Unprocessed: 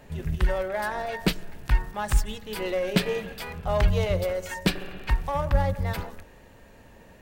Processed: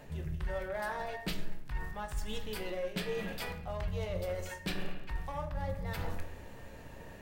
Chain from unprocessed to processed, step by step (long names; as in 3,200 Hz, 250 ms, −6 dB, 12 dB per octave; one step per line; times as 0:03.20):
reversed playback
downward compressor 5 to 1, threshold −36 dBFS, peak gain reduction 19 dB
reversed playback
rectangular room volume 120 cubic metres, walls mixed, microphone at 0.44 metres